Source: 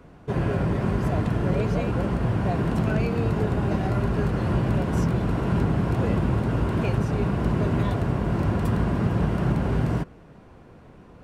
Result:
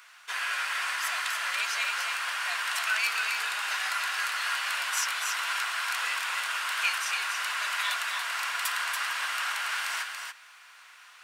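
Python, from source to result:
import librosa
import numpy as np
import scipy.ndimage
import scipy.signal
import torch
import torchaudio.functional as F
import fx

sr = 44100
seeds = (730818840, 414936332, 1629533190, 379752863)

y = scipy.signal.sosfilt(scipy.signal.butter(4, 1300.0, 'highpass', fs=sr, output='sos'), x)
y = fx.high_shelf(y, sr, hz=2100.0, db=11.0)
y = y + 10.0 ** (-5.0 / 20.0) * np.pad(y, (int(283 * sr / 1000.0), 0))[:len(y)]
y = y * 10.0 ** (5.0 / 20.0)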